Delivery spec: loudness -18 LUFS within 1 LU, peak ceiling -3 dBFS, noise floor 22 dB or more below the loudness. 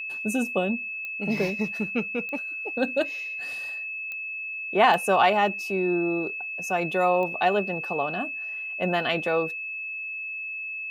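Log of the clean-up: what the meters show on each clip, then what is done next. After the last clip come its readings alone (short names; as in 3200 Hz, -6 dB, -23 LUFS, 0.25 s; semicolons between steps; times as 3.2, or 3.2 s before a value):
clicks 5; steady tone 2600 Hz; tone level -31 dBFS; loudness -26.0 LUFS; peak -7.5 dBFS; loudness target -18.0 LUFS
-> de-click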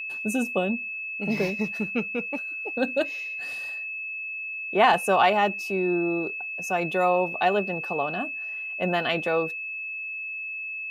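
clicks 0; steady tone 2600 Hz; tone level -31 dBFS
-> notch 2600 Hz, Q 30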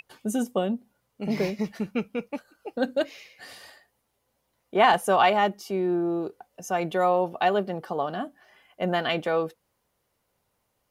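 steady tone none; loudness -26.0 LUFS; peak -7.5 dBFS; loudness target -18.0 LUFS
-> gain +8 dB; limiter -3 dBFS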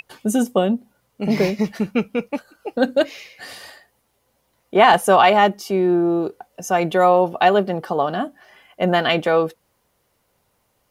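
loudness -18.5 LUFS; peak -3.0 dBFS; noise floor -68 dBFS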